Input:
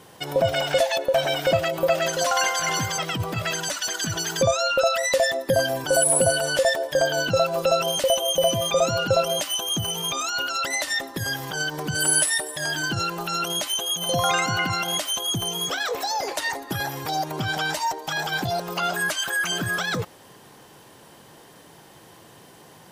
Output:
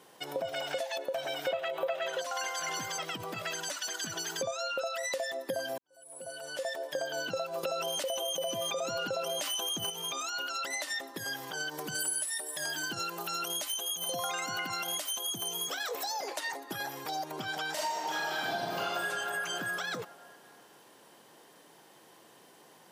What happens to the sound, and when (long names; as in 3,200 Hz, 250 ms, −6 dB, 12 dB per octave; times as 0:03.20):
0:01.48–0:02.21: gain on a spectral selection 380–4,100 Hz +11 dB
0:05.78–0:06.95: fade in quadratic
0:07.63–0:09.90: envelope flattener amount 70%
0:11.71–0:16.20: high-shelf EQ 8,100 Hz +9.5 dB
0:17.73–0:19.04: thrown reverb, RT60 2.4 s, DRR −9.5 dB
whole clip: high-pass filter 240 Hz 12 dB per octave; downward compressor, threshold −23 dBFS; level −8 dB